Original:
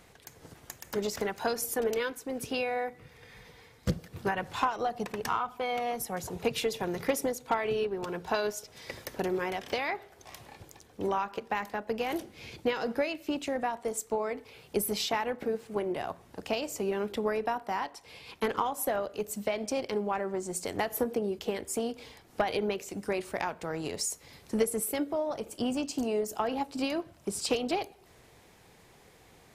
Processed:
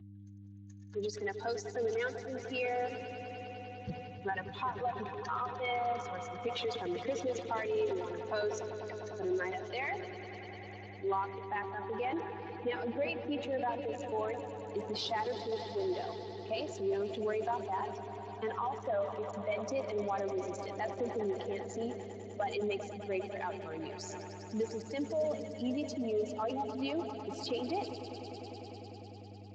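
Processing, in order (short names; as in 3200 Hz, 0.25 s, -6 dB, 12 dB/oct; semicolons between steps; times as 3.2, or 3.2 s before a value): per-bin expansion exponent 2; low shelf 190 Hz -7 dB; compressor 6:1, threshold -36 dBFS, peak gain reduction 11.5 dB; dynamic EQ 530 Hz, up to +5 dB, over -53 dBFS, Q 0.7; swelling echo 0.1 s, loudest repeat 5, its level -17 dB; transient shaper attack -6 dB, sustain +4 dB; buzz 100 Hz, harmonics 3, -54 dBFS -6 dB/oct; gain +3 dB; Speex 21 kbps 16000 Hz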